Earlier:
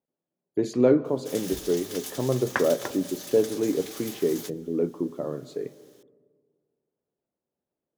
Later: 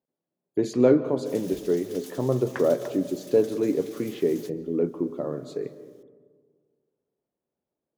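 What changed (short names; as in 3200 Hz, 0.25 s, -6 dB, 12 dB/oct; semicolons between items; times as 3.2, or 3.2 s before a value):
speech: send +6.5 dB; background -9.0 dB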